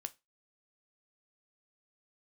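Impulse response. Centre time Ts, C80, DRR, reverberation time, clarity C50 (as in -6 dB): 2 ms, 31.5 dB, 10.5 dB, 0.25 s, 23.0 dB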